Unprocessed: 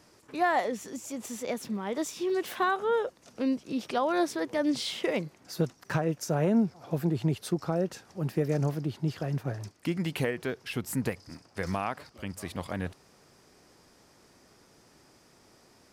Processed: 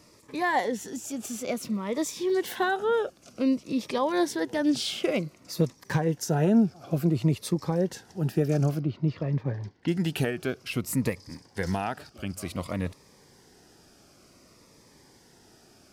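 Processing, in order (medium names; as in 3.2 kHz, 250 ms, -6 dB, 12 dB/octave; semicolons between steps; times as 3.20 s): 8.79–9.88 s: distance through air 230 m; Shepard-style phaser falling 0.55 Hz; trim +4 dB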